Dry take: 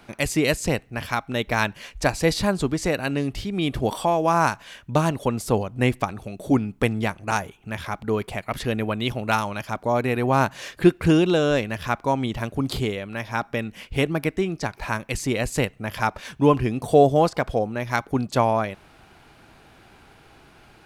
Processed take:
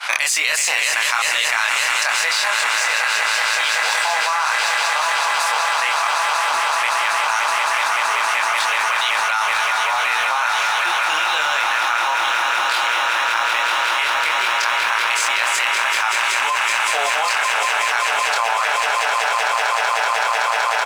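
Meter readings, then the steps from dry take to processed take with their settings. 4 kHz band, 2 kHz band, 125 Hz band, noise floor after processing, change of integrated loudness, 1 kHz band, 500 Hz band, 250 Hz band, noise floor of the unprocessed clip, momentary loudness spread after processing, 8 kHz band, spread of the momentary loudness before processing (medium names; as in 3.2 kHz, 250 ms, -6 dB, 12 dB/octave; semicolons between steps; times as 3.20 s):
+14.0 dB, +14.0 dB, under -30 dB, -20 dBFS, +6.5 dB, +9.0 dB, -6.5 dB, under -25 dB, -53 dBFS, 1 LU, +14.0 dB, 9 LU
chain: high-pass 1 kHz 24 dB/octave; de-esser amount 45%; expander -49 dBFS; low-pass 9.4 kHz 12 dB/octave; in parallel at -11 dB: small samples zeroed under -32.5 dBFS; on the sum: doubling 26 ms -3 dB; on a send: echo with a slow build-up 189 ms, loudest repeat 8, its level -9 dB; on the sum: level flattener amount 100%; trim -2.5 dB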